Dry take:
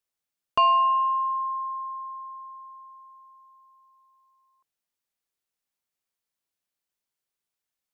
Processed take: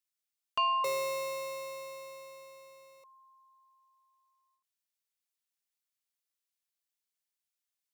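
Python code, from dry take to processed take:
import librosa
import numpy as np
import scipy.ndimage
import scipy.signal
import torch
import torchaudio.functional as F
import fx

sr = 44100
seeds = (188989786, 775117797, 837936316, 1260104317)

y = fx.tilt_shelf(x, sr, db=-7.5, hz=1200.0)
y = fx.sample_hold(y, sr, seeds[0], rate_hz=1600.0, jitter_pct=0, at=(0.84, 3.04))
y = fx.end_taper(y, sr, db_per_s=110.0)
y = y * 10.0 ** (-9.0 / 20.0)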